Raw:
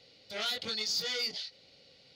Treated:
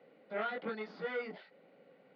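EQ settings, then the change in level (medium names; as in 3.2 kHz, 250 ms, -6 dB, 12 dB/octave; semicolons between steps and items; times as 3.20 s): steep high-pass 170 Hz 36 dB/octave; low-pass 1.7 kHz 24 dB/octave; +4.0 dB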